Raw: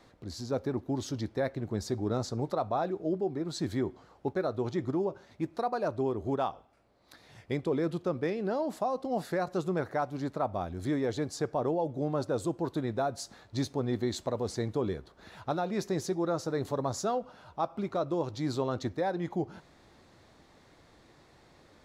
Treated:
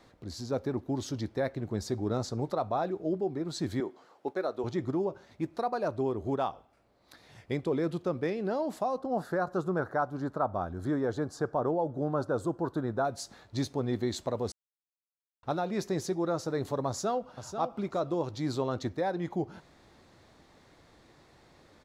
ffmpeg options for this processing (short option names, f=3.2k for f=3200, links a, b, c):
-filter_complex "[0:a]asettb=1/sr,asplit=3[a][b][c];[a]atrim=end=3.804[d];[b]atrim=start=3.8:end=4.64,asetpts=PTS-STARTPTS,afade=t=in:d=0.004:c=qsin,afade=t=out:st=0.836:d=0.004:c=qsin,highpass=320[e];[c]atrim=start=4.636[f];[d][e]acrossfade=d=0.004:c1=hsin:c2=qsin[g];[g][f]acrossfade=d=0.004:c1=qsin:c2=hsin,asettb=1/sr,asplit=3[h][i][j];[h]atrim=end=8.984[k];[i]atrim=start=8.98:end=13.05,asetpts=PTS-STARTPTS,afade=t=in:d=0.004:c=qsin,afade=t=out:st=4.066:d=0.004:c=qsin,highshelf=f=1.8k:t=q:w=3:g=-6[l];[j]atrim=start=13.046[m];[k][l]acrossfade=d=0.004:c1=hsin:c2=qsin[n];[n][m]acrossfade=d=0.004:c1=qsin:c2=hsin,asplit=2[o][p];[p]afade=t=in:st=16.88:d=0.01,afade=t=out:st=17.37:d=0.01,aecho=0:1:490|980:0.398107|0.0597161[q];[o][q]amix=inputs=2:normalize=0,asplit=3[r][s][t];[r]atrim=end=14.52,asetpts=PTS-STARTPTS,afade=t=out:st=14.516:d=0.004:c=hsin[u];[s]atrim=start=14.52:end=15.43,asetpts=PTS-STARTPTS,volume=0[v];[t]atrim=start=15.43,asetpts=PTS-STARTPTS,afade=t=in:d=0.004:c=hsin[w];[u][v][w]concat=n=3:v=0:a=1"